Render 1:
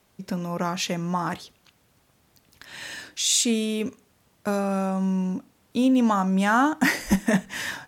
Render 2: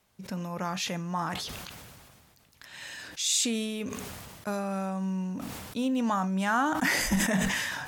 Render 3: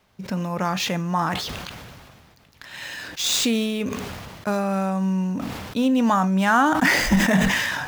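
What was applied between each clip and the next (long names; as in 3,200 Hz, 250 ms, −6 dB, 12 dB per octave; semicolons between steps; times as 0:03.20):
parametric band 330 Hz −5 dB 1.3 octaves; level that may fall only so fast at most 28 dB per second; level −5 dB
running median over 5 samples; level +8.5 dB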